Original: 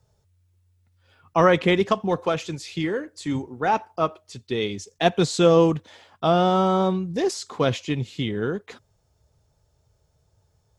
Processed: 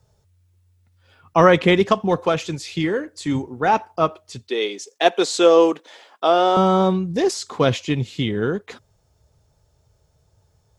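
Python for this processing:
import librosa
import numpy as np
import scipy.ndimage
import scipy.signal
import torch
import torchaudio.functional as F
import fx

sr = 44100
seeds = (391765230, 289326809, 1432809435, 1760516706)

y = fx.highpass(x, sr, hz=320.0, slope=24, at=(4.48, 6.57))
y = y * librosa.db_to_amplitude(4.0)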